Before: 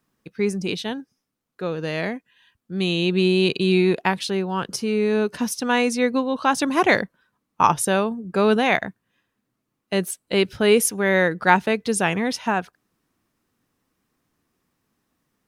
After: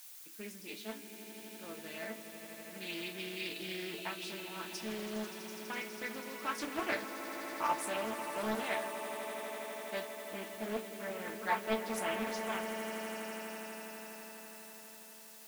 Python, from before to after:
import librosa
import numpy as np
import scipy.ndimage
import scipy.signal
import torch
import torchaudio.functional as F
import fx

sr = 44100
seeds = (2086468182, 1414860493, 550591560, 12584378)

y = fx.cvsd(x, sr, bps=16000, at=(10.0, 11.42))
y = scipy.signal.sosfilt(scipy.signal.butter(2, 53.0, 'highpass', fs=sr, output='sos'), y)
y = fx.low_shelf(y, sr, hz=250.0, db=-9.0)
y = fx.level_steps(y, sr, step_db=21, at=(5.3, 6.05))
y = fx.resonator_bank(y, sr, root=57, chord='sus4', decay_s=0.21)
y = fx.echo_swell(y, sr, ms=82, loudest=8, wet_db=-14)
y = fx.dmg_noise_colour(y, sr, seeds[0], colour='blue', level_db=-50.0)
y = fx.doppler_dist(y, sr, depth_ms=0.57)
y = F.gain(torch.from_numpy(y), -1.5).numpy()